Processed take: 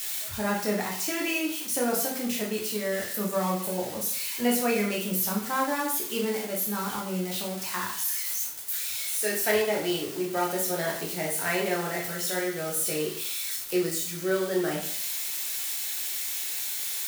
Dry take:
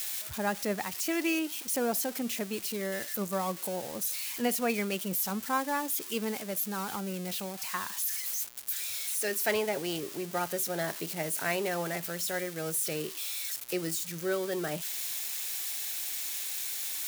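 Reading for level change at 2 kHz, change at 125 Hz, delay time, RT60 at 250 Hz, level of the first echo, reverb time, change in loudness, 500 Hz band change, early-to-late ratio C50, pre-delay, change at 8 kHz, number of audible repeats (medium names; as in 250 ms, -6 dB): +4.0 dB, +4.0 dB, no echo, 0.55 s, no echo, 0.50 s, +4.0 dB, +5.0 dB, 6.0 dB, 7 ms, +3.5 dB, no echo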